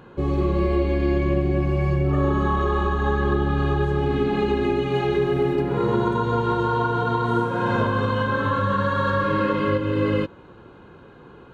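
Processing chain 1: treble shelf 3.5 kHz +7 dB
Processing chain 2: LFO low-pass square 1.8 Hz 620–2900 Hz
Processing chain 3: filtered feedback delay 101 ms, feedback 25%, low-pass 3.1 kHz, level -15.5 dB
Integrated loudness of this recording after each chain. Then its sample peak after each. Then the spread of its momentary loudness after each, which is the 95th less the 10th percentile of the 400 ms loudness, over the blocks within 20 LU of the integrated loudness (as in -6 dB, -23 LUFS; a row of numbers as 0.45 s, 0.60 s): -22.0 LUFS, -20.5 LUFS, -22.0 LUFS; -9.0 dBFS, -7.5 dBFS, -9.0 dBFS; 1 LU, 2 LU, 2 LU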